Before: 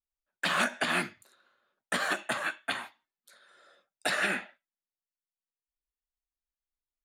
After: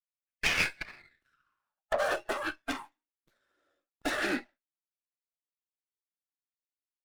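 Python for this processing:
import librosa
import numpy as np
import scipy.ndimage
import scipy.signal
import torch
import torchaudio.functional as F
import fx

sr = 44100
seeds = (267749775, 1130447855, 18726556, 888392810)

y = fx.noise_reduce_blind(x, sr, reduce_db=17)
y = fx.env_lowpass_down(y, sr, base_hz=330.0, full_db=-25.0, at=(0.79, 1.98), fade=0.02)
y = 10.0 ** (-26.0 / 20.0) * np.tanh(y / 10.0 ** (-26.0 / 20.0))
y = fx.filter_sweep_highpass(y, sr, from_hz=2300.0, to_hz=290.0, start_s=0.95, end_s=2.55, q=5.5)
y = fx.running_max(y, sr, window=5)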